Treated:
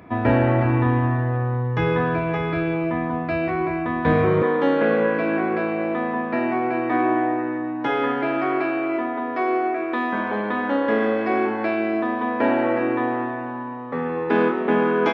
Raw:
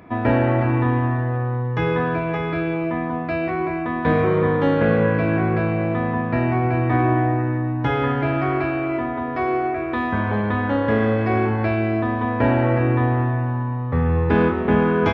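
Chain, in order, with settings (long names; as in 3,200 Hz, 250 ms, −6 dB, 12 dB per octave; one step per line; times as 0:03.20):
high-pass filter 42 Hz 24 dB per octave, from 0:04.42 230 Hz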